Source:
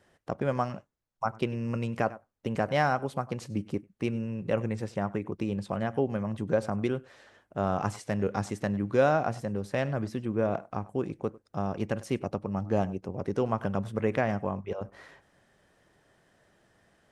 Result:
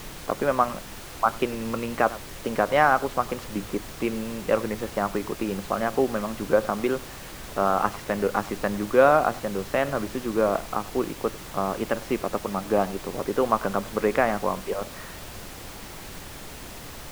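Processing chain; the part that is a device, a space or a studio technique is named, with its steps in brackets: horn gramophone (BPF 260–3200 Hz; bell 1200 Hz +6 dB 0.5 oct; wow and flutter; pink noise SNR 13 dB); gain +6 dB

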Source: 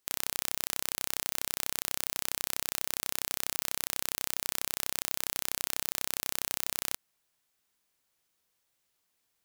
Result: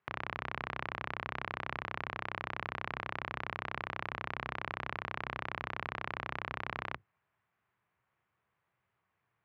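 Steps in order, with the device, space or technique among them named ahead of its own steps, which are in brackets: sub-octave bass pedal (octaver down 1 oct, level +2 dB; speaker cabinet 69–2200 Hz, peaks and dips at 120 Hz +3 dB, 270 Hz -10 dB, 510 Hz -4 dB, 1100 Hz +4 dB); gain +4 dB

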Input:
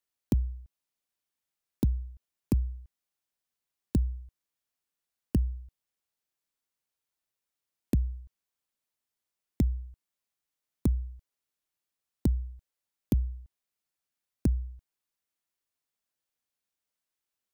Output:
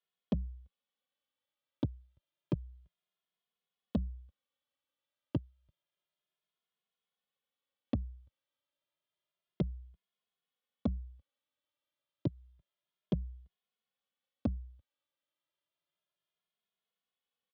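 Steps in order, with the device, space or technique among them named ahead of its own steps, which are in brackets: barber-pole flanger into a guitar amplifier (endless flanger 2.4 ms +0.3 Hz; soft clip -22 dBFS, distortion -17 dB; speaker cabinet 97–4100 Hz, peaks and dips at 170 Hz +4 dB, 560 Hz +9 dB, 1200 Hz +4 dB, 3300 Hz +9 dB)

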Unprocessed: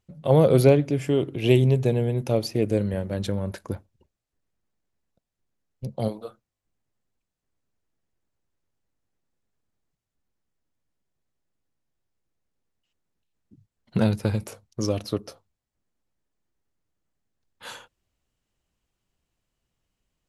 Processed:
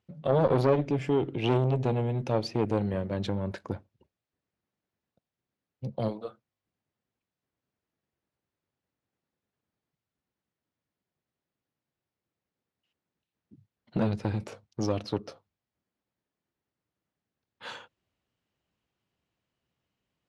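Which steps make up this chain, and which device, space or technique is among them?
valve radio (BPF 98–4300 Hz; tube stage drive 13 dB, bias 0.25; core saturation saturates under 520 Hz)

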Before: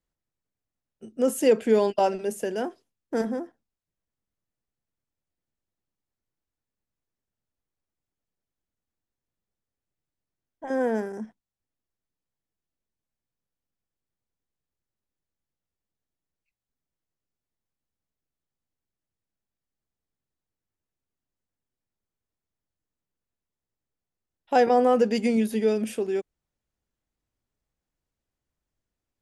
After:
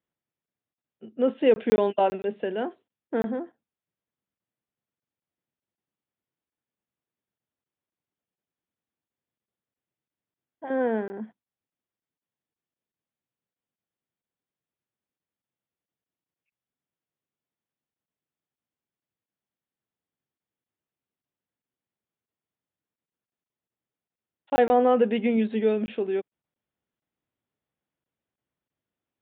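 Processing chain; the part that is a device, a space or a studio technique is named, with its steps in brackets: call with lost packets (HPF 130 Hz 12 dB/oct; downsampling 8000 Hz; packet loss)

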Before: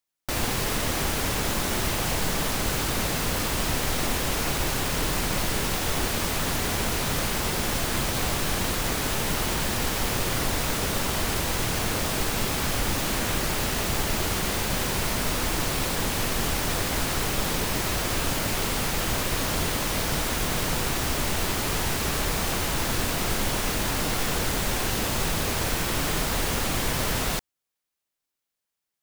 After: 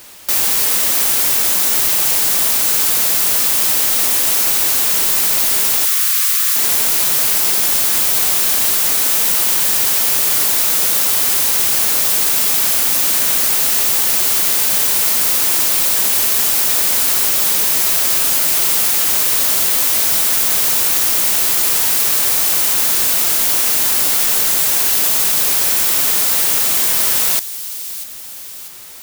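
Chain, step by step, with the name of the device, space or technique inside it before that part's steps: turntable without a phono preamp (RIAA curve recording; white noise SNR 24 dB); 5.85–6.56 Chebyshev high-pass 1100 Hz, order 5; thin delay 0.644 s, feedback 50%, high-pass 3300 Hz, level -12.5 dB; gain +2.5 dB

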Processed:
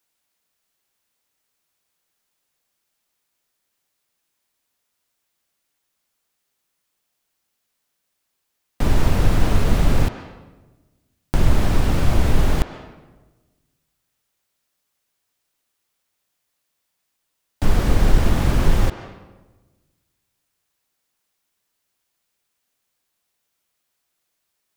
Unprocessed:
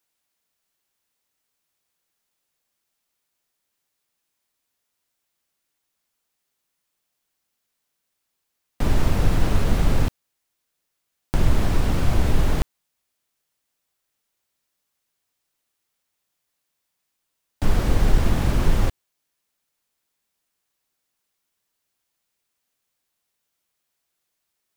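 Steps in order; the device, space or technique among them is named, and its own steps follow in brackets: filtered reverb send (on a send: HPF 500 Hz 6 dB/oct + LPF 4200 Hz 12 dB/oct + reverb RT60 1.2 s, pre-delay 0.118 s, DRR 9 dB); on the sum: gain +2.5 dB

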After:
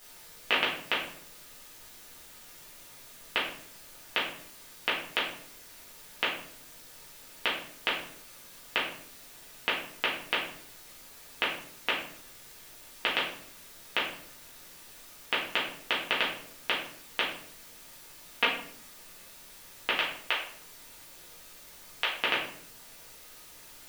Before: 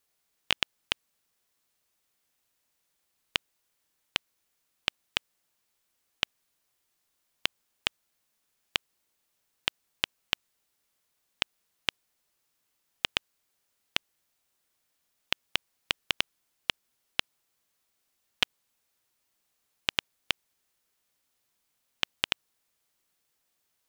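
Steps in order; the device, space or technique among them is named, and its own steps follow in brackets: 19.9–22.1 HPF 570 Hz 12 dB/oct; wax cylinder (BPF 270–2200 Hz; wow and flutter; white noise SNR 13 dB); shoebox room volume 88 m³, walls mixed, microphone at 1.8 m

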